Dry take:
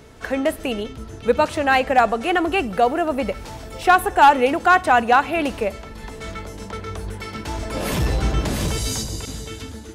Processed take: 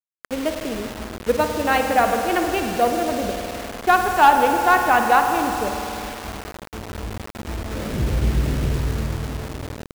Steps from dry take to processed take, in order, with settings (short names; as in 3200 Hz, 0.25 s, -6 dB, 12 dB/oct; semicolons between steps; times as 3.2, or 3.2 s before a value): Wiener smoothing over 41 samples; expander -32 dBFS; spring tank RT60 3.3 s, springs 50 ms, chirp 45 ms, DRR 4 dB; bit-crush 5-bit; gain -1.5 dB